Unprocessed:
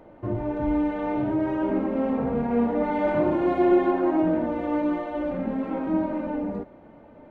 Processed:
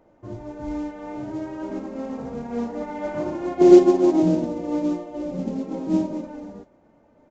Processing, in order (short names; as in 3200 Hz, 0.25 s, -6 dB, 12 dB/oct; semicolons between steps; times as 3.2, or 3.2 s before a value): 3.61–6.25 fifteen-band EQ 160 Hz +12 dB, 400 Hz +9 dB, 1600 Hz -9 dB; modulation noise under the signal 25 dB; downsampling 16000 Hz; upward expander 1.5:1, over -29 dBFS; gain +2 dB